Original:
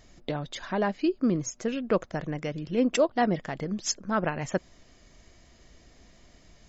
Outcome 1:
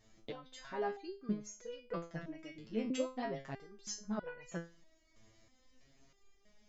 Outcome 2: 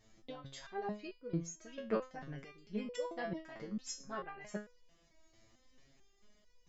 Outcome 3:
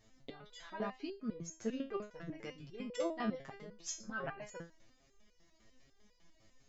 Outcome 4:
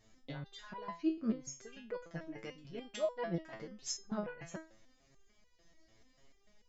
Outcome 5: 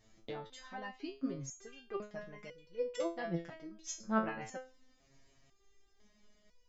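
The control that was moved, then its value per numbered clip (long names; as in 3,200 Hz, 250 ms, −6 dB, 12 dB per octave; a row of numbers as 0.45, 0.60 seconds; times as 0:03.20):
step-sequenced resonator, speed: 3.1, 4.5, 10, 6.8, 2 Hertz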